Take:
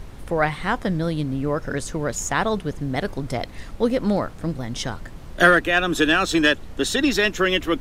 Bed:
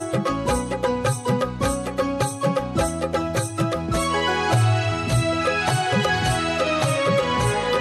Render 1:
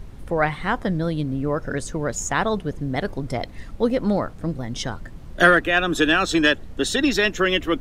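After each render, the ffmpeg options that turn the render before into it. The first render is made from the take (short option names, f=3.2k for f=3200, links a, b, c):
-af "afftdn=nr=6:nf=-39"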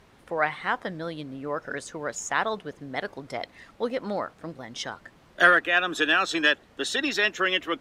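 -af "highpass=f=990:p=1,aemphasis=mode=reproduction:type=cd"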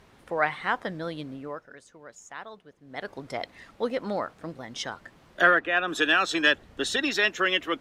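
-filter_complex "[0:a]asettb=1/sr,asplit=3[a][b][c];[a]atrim=end=5.414[d];[b]atrim=start=5.41:end=5.88,asetpts=PTS-STARTPTS,afade=t=in:d=0.004:c=qsin,afade=t=out:st=0.466:d=0.004:c=qsin,lowpass=f=1.9k:p=1[e];[c]atrim=start=5.876[f];[d][e]acrossfade=d=0.004:c1=hsin:c2=qsin[g];[g][f]acrossfade=d=0.004:c1=qsin:c2=hsin,asettb=1/sr,asplit=3[h][i][j];[h]atrim=end=6.474[k];[i]atrim=start=6.47:end=6.97,asetpts=PTS-STARTPTS,afade=t=in:d=0.004:c=qsin,afade=t=out:st=0.496:d=0.004:c=qsin,lowshelf=f=130:g=12[l];[j]atrim=start=6.966[m];[k][l]acrossfade=d=0.004:c1=hsin:c2=qsin[n];[n][m]acrossfade=d=0.004:c1=qsin:c2=hsin,asplit=3[o][p][q];[o]atrim=end=1.67,asetpts=PTS-STARTPTS,afade=t=out:st=1.29:d=0.38:silence=0.177828[r];[p]atrim=start=1.67:end=2.82,asetpts=PTS-STARTPTS,volume=-15dB[s];[q]atrim=start=2.82,asetpts=PTS-STARTPTS,afade=t=in:d=0.38:silence=0.177828[t];[r][s][t]concat=n=3:v=0:a=1"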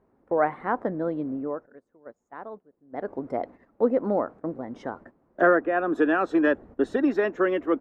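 -af "agate=range=-13dB:threshold=-45dB:ratio=16:detection=peak,firequalizer=gain_entry='entry(150,0);entry(250,9);entry(3200,-23)':delay=0.05:min_phase=1"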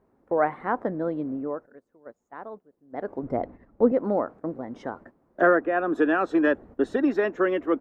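-filter_complex "[0:a]asettb=1/sr,asplit=3[a][b][c];[a]atrim=end=3.234[d];[b]atrim=start=3.23:end=3.92,asetpts=PTS-STARTPTS,afade=t=in:d=0.004:c=qsin,afade=t=out:st=0.686:d=0.004:c=qsin,aemphasis=mode=reproduction:type=bsi[e];[c]atrim=start=3.916[f];[d][e]acrossfade=d=0.004:c1=hsin:c2=qsin[g];[g][f]acrossfade=d=0.004:c1=qsin:c2=hsin"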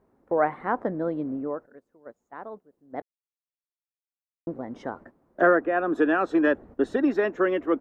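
-filter_complex "[0:a]asplit=3[a][b][c];[a]atrim=end=3.02,asetpts=PTS-STARTPTS,afade=t=out:st=3.016:d=0.004:c=hsin[d];[b]atrim=start=3.02:end=4.47,asetpts=PTS-STARTPTS,volume=0[e];[c]atrim=start=4.47,asetpts=PTS-STARTPTS,afade=t=in:d=0.004:c=hsin[f];[d][e][f]concat=n=3:v=0:a=1"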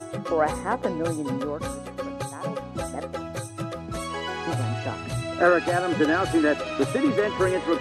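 -filter_complex "[1:a]volume=-9.5dB[a];[0:a][a]amix=inputs=2:normalize=0"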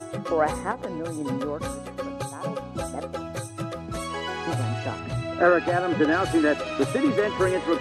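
-filter_complex "[0:a]asettb=1/sr,asplit=3[a][b][c];[a]atrim=end=0.714[d];[b]atrim=start=0.71:end=1.21,asetpts=PTS-STARTPTS,afade=t=in:d=0.004:c=qsin,afade=t=out:st=0.496:d=0.004:c=qsin,acompressor=threshold=-27dB:ratio=4:attack=3.2:release=140:knee=1:detection=peak[e];[c]atrim=start=1.206[f];[d][e]acrossfade=d=0.004:c1=hsin:c2=qsin[g];[g][f]acrossfade=d=0.004:c1=qsin:c2=hsin,asettb=1/sr,asplit=3[h][i][j];[h]atrim=end=2.074[k];[i]atrim=start=2.07:end=3.29,asetpts=PTS-STARTPTS,afade=t=in:d=0.004:c=qsin,afade=t=out:st=1.216:d=0.004:c=qsin,bandreject=f=1.9k:w=7.2[l];[j]atrim=start=3.286[m];[k][l]acrossfade=d=0.004:c1=hsin:c2=qsin[n];[n][m]acrossfade=d=0.004:c1=qsin:c2=hsin,asettb=1/sr,asplit=3[o][p][q];[o]atrim=end=4.994[r];[p]atrim=start=4.99:end=6.12,asetpts=PTS-STARTPTS,afade=t=in:d=0.004:c=qsin,afade=t=out:st=1.126:d=0.004:c=qsin,aemphasis=mode=reproduction:type=50fm[s];[q]atrim=start=6.116[t];[r][s]acrossfade=d=0.004:c1=hsin:c2=qsin[u];[u][t]acrossfade=d=0.004:c1=qsin:c2=hsin"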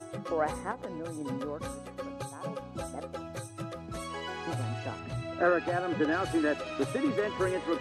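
-af "volume=-7dB"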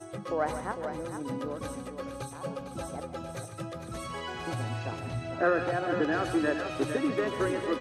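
-af "aecho=1:1:145|454:0.282|0.376"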